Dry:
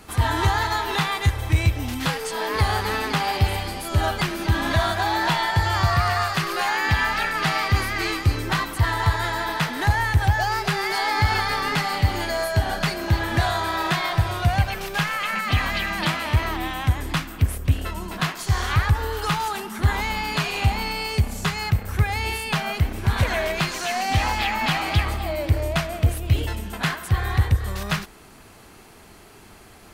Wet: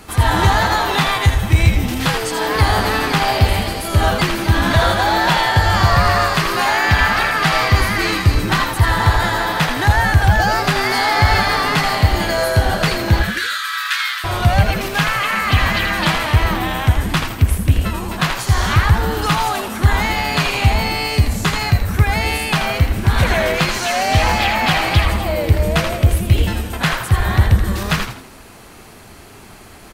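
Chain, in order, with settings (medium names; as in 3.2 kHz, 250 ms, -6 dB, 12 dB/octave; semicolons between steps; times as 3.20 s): 13.22–14.24 s: steep high-pass 1.3 kHz 96 dB/octave; frequency-shifting echo 81 ms, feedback 38%, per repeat -140 Hz, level -6 dB; trim +6 dB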